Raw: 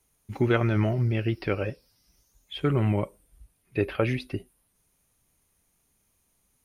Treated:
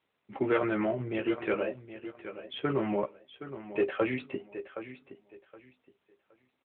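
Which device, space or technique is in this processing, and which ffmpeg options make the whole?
telephone: -filter_complex "[0:a]asplit=3[link_01][link_02][link_03];[link_01]afade=type=out:start_time=2.79:duration=0.02[link_04];[link_02]adynamicequalizer=threshold=0.00251:dfrequency=2400:dqfactor=4.3:tfrequency=2400:tqfactor=4.3:attack=5:release=100:ratio=0.375:range=2:mode=cutabove:tftype=bell,afade=type=in:start_time=2.79:duration=0.02,afade=type=out:start_time=4.11:duration=0.02[link_05];[link_03]afade=type=in:start_time=4.11:duration=0.02[link_06];[link_04][link_05][link_06]amix=inputs=3:normalize=0,highpass=310,lowpass=3200,asplit=2[link_07][link_08];[link_08]adelay=15,volume=-4.5dB[link_09];[link_07][link_09]amix=inputs=2:normalize=0,aecho=1:1:769|1538|2307:0.224|0.0515|0.0118,asoftclip=type=tanh:threshold=-17dB" -ar 8000 -c:a libopencore_amrnb -b:a 12200

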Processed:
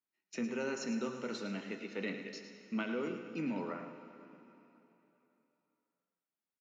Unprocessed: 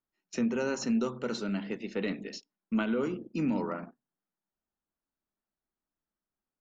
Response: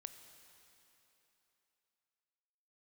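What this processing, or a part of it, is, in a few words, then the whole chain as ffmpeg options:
PA in a hall: -filter_complex "[0:a]highpass=150,equalizer=frequency=2200:width_type=o:width=0.7:gain=5.5,aecho=1:1:108:0.299[link_01];[1:a]atrim=start_sample=2205[link_02];[link_01][link_02]afir=irnorm=-1:irlink=0,volume=-1dB"

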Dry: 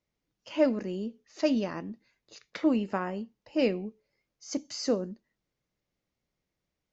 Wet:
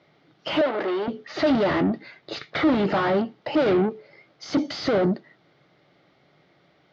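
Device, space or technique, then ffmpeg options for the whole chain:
overdrive pedal into a guitar cabinet: -filter_complex "[0:a]asplit=2[link_01][link_02];[link_02]highpass=frequency=720:poles=1,volume=40dB,asoftclip=type=tanh:threshold=-11.5dB[link_03];[link_01][link_03]amix=inputs=2:normalize=0,lowpass=frequency=1300:poles=1,volume=-6dB,highpass=98,equalizer=frequency=150:width_type=q:width=4:gain=6,equalizer=frequency=220:width_type=q:width=4:gain=-8,equalizer=frequency=490:width_type=q:width=4:gain=-7,equalizer=frequency=1000:width_type=q:width=4:gain=-9,equalizer=frequency=1700:width_type=q:width=4:gain=-5,equalizer=frequency=2600:width_type=q:width=4:gain=-8,lowpass=frequency=4200:width=0.5412,lowpass=frequency=4200:width=1.3066,asettb=1/sr,asplit=3[link_04][link_05][link_06];[link_04]atrim=end=0.614[link_07];[link_05]atrim=start=0.61:end=1.08,asetpts=PTS-STARTPTS,afade=type=in:duration=0.004:curve=qsin,afade=type=out:start_time=0.466:duration=0.004:curve=qsin,acrossover=split=380 4400:gain=0.0794 1 0.224[link_08][link_09][link_10];[link_08][link_09][link_10]amix=inputs=3:normalize=0[link_11];[link_06]atrim=start=1.076[link_12];[link_07][link_11]acrossfade=duration=0.004:curve1=hsin:curve2=qsin[link_13];[link_13][link_12]acrossfade=duration=0.004:curve1=qsin:curve2=hsin,volume=2.5dB"

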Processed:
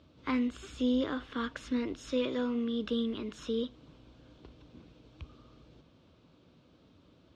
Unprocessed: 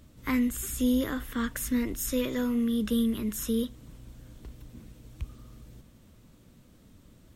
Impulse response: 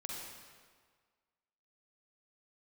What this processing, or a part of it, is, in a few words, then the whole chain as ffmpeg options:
guitar cabinet: -af "highpass=110,equalizer=frequency=120:width_type=q:width=4:gain=-8,equalizer=frequency=210:width_type=q:width=4:gain=-10,equalizer=frequency=1900:width_type=q:width=4:gain=-9,lowpass=frequency=4500:width=0.5412,lowpass=frequency=4500:width=1.3066"

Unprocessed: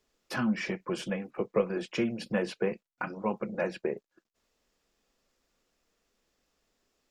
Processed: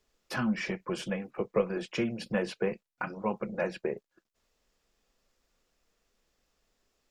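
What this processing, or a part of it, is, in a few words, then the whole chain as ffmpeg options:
low shelf boost with a cut just above: -af "lowshelf=frequency=73:gain=6,equalizer=frequency=280:width_type=o:width=0.77:gain=-3"

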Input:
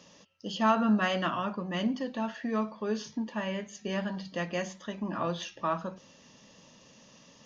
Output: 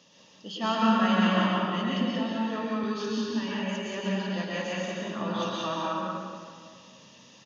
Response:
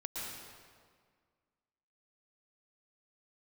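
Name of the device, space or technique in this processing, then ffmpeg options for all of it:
PA in a hall: -filter_complex "[0:a]highpass=100,equalizer=frequency=3500:width_type=o:width=0.74:gain=5.5,aecho=1:1:186:0.631[link_01];[1:a]atrim=start_sample=2205[link_02];[link_01][link_02]afir=irnorm=-1:irlink=0,asettb=1/sr,asplit=3[link_03][link_04][link_05];[link_03]atrim=end=2.834[link_06];[link_04]atrim=start=2.83:end=3.59,asetpts=PTS-STARTPTS,afade=type=in:duration=0.004:curve=qsin,afade=type=out:start_time=0.756:duration=0.004:curve=qsin,equalizer=frequency=100:width_type=o:width=0.67:gain=9,equalizer=frequency=630:width_type=o:width=0.67:gain=-8,equalizer=frequency=4000:width_type=o:width=0.67:gain=5[link_07];[link_05]atrim=start=3.586[link_08];[link_06][link_07]acrossfade=duration=0.004:curve1=hsin:curve2=qsin[link_09];[link_09][link_08]acrossfade=duration=0.004:curve1=qsin:curve2=hsin"

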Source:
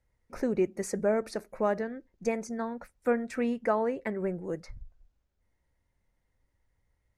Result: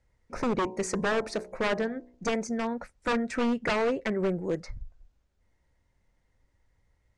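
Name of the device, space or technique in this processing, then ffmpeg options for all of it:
synthesiser wavefolder: -filter_complex "[0:a]aeval=exprs='0.0531*(abs(mod(val(0)/0.0531+3,4)-2)-1)':channel_layout=same,lowpass=frequency=8600:width=0.5412,lowpass=frequency=8600:width=1.3066,asplit=3[link_01][link_02][link_03];[link_01]afade=type=out:start_time=0.63:duration=0.02[link_04];[link_02]bandreject=frequency=61.89:width_type=h:width=4,bandreject=frequency=123.78:width_type=h:width=4,bandreject=frequency=185.67:width_type=h:width=4,bandreject=frequency=247.56:width_type=h:width=4,bandreject=frequency=309.45:width_type=h:width=4,bandreject=frequency=371.34:width_type=h:width=4,bandreject=frequency=433.23:width_type=h:width=4,bandreject=frequency=495.12:width_type=h:width=4,bandreject=frequency=557.01:width_type=h:width=4,bandreject=frequency=618.9:width_type=h:width=4,bandreject=frequency=680.79:width_type=h:width=4,bandreject=frequency=742.68:width_type=h:width=4,bandreject=frequency=804.57:width_type=h:width=4,bandreject=frequency=866.46:width_type=h:width=4,bandreject=frequency=928.35:width_type=h:width=4,bandreject=frequency=990.24:width_type=h:width=4,bandreject=frequency=1052.13:width_type=h:width=4,afade=type=in:start_time=0.63:duration=0.02,afade=type=out:start_time=2.31:duration=0.02[link_05];[link_03]afade=type=in:start_time=2.31:duration=0.02[link_06];[link_04][link_05][link_06]amix=inputs=3:normalize=0,volume=5dB"

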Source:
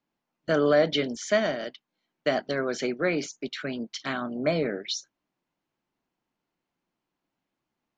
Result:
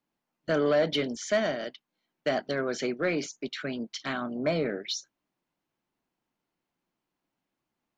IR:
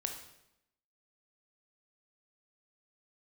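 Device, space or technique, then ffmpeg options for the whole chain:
saturation between pre-emphasis and de-emphasis: -af "highshelf=frequency=6000:gain=10.5,asoftclip=type=tanh:threshold=-15.5dB,highshelf=frequency=6000:gain=-10.5,volume=-1dB"

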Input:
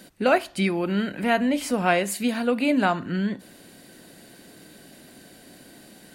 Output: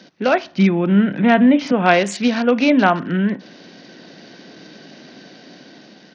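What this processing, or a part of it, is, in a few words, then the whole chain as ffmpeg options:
Bluetooth headset: -filter_complex "[0:a]asettb=1/sr,asplit=3[link_01][link_02][link_03];[link_01]atrim=end=0.444[link_04];[link_02]atrim=start=0.44:end=1.72,asetpts=PTS-STARTPTS,afade=type=in:duration=0.004:curve=qsin,afade=type=out:start_time=1.276:duration=0.004:curve=qsin,bass=frequency=250:gain=10,treble=frequency=4000:gain=-7[link_05];[link_03]atrim=start=1.716[link_06];[link_04][link_05]acrossfade=duration=0.004:curve1=hsin:curve2=qsin[link_07];[link_07][link_06]acrossfade=duration=0.004:curve1=qsin:curve2=hsin,highpass=frequency=140:width=0.5412,highpass=frequency=140:width=1.3066,dynaudnorm=framelen=430:gausssize=5:maxgain=5dB,aresample=16000,aresample=44100,volume=3dB" -ar 48000 -c:a sbc -b:a 64k

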